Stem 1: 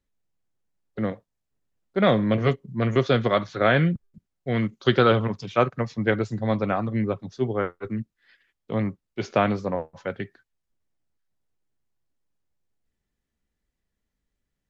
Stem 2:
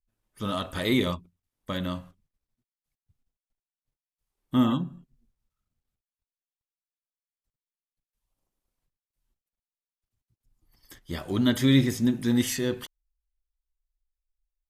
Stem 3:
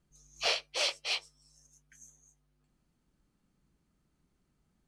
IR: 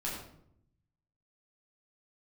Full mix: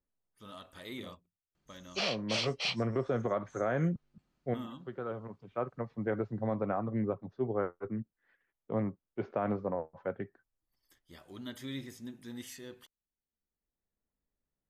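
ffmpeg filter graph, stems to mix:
-filter_complex "[0:a]lowpass=1.1k,volume=-3dB[a];[1:a]volume=-17dB,asplit=2[b][c];[2:a]lowpass=5.6k,adelay=1550,volume=1dB[d];[c]apad=whole_len=648180[e];[a][e]sidechaincompress=threshold=-53dB:ratio=12:attack=24:release=1220[f];[f][b][d]amix=inputs=3:normalize=0,lowshelf=f=280:g=-7,alimiter=limit=-21.5dB:level=0:latency=1:release=88"

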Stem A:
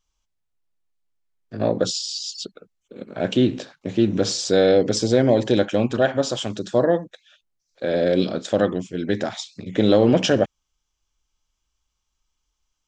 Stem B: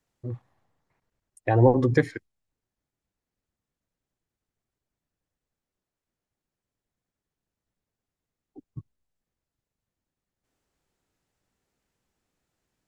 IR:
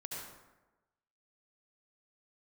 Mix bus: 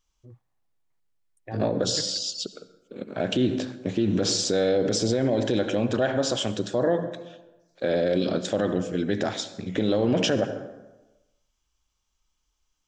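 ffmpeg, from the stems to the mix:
-filter_complex "[0:a]volume=-1dB,asplit=2[a][b];[b]volume=-11dB[c];[1:a]volume=-15dB[d];[2:a]atrim=start_sample=2205[e];[c][e]afir=irnorm=-1:irlink=0[f];[a][d][f]amix=inputs=3:normalize=0,alimiter=limit=-14dB:level=0:latency=1:release=46"

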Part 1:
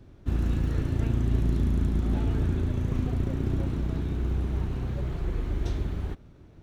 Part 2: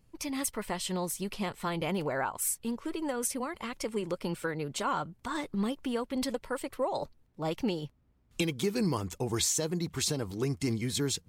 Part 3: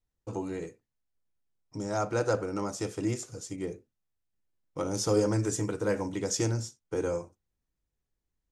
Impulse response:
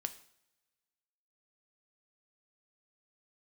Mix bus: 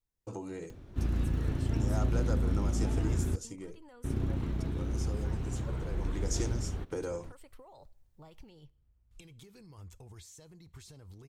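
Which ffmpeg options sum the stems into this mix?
-filter_complex "[0:a]acompressor=mode=upward:threshold=-37dB:ratio=2.5,adelay=700,volume=-7.5dB,asplit=3[a][b][c];[a]atrim=end=3.36,asetpts=PTS-STARTPTS,afade=t=out:st=3.356:d=0.004:c=hsin[d];[b]atrim=start=3.36:end=4.04,asetpts=PTS-STARTPTS,volume=0[e];[c]atrim=start=4.04,asetpts=PTS-STARTPTS,afade=t=in:d=0.004:c=hsin[f];[d][e][f]concat=n=3:v=0:a=1,asplit=2[g][h];[h]volume=-6.5dB[i];[1:a]alimiter=level_in=2dB:limit=-24dB:level=0:latency=1:release=25,volume=-2dB,acompressor=threshold=-39dB:ratio=6,asubboost=boost=7:cutoff=89,adelay=800,volume=-15dB,asplit=2[j][k];[k]volume=-5.5dB[l];[2:a]dynaudnorm=f=160:g=3:m=5dB,highshelf=f=8.5k:g=5.5,acompressor=threshold=-34dB:ratio=2.5,volume=5dB,afade=t=out:st=3.18:d=0.77:silence=0.398107,afade=t=in:st=5.91:d=0.5:silence=0.298538[m];[3:a]atrim=start_sample=2205[n];[i][l]amix=inputs=2:normalize=0[o];[o][n]afir=irnorm=-1:irlink=0[p];[g][j][m][p]amix=inputs=4:normalize=0"

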